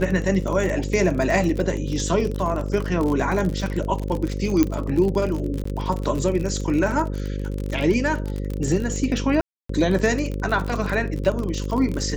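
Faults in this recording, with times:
buzz 50 Hz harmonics 11 -27 dBFS
crackle 45/s -25 dBFS
4.63 pop -6 dBFS
5.64–5.65 gap 14 ms
9.41–9.69 gap 0.284 s

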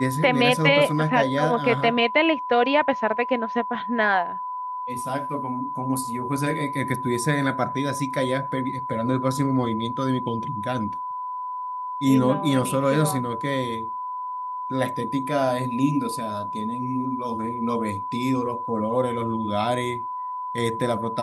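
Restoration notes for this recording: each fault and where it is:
tone 1000 Hz -28 dBFS

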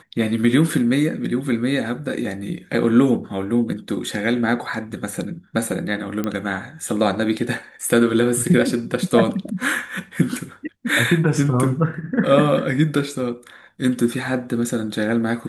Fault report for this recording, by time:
6.24 pop -11 dBFS

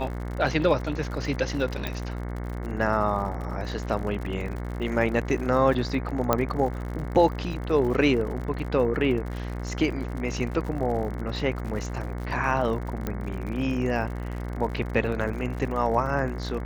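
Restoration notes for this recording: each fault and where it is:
buzz 60 Hz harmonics 37 -32 dBFS
crackle 71/s -34 dBFS
1.87 pop
6.33 pop -7 dBFS
13.07 pop -15 dBFS

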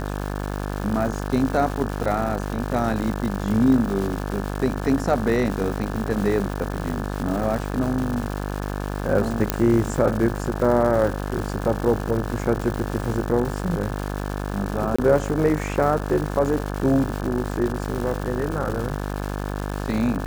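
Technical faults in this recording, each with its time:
buzz 50 Hz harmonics 35 -28 dBFS
crackle 390/s -28 dBFS
9.5 pop -3 dBFS
14.96–14.98 gap 25 ms

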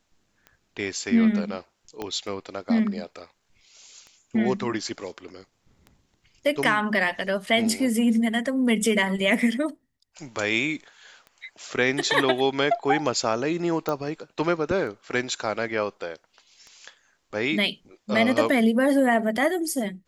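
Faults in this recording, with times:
tick 33 1/3 rpm -29 dBFS
2.02 pop -17 dBFS
13.89 pop -14 dBFS

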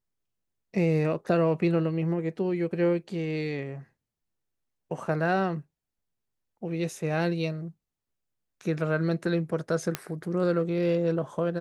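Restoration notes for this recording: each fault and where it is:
9.95 pop -11 dBFS

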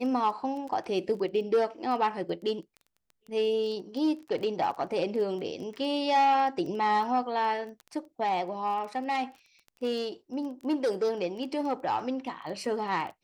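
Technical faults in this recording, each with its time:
crackle 15/s -37 dBFS

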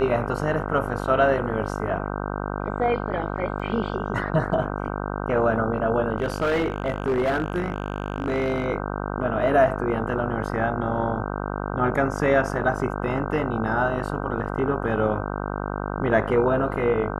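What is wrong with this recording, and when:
buzz 50 Hz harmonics 31 -29 dBFS
3.59–3.6 gap 6.5 ms
6.18–8.66 clipped -18.5 dBFS

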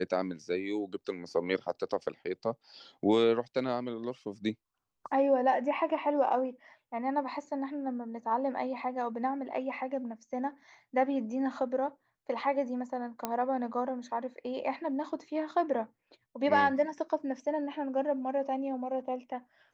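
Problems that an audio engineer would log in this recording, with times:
13.25 pop -16 dBFS

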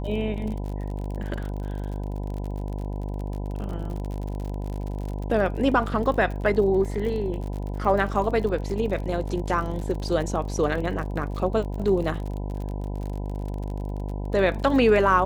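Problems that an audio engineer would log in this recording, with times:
buzz 50 Hz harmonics 20 -30 dBFS
crackle 46/s -32 dBFS

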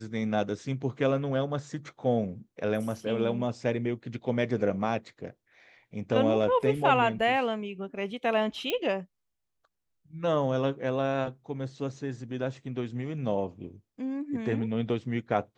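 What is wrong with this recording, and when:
8.7 pop -14 dBFS

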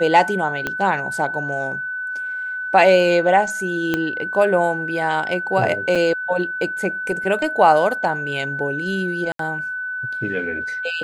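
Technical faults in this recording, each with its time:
tone 1500 Hz -24 dBFS
0.67 pop -9 dBFS
3.94 pop -7 dBFS
5.95–5.96 gap 5.2 ms
9.32–9.39 gap 73 ms

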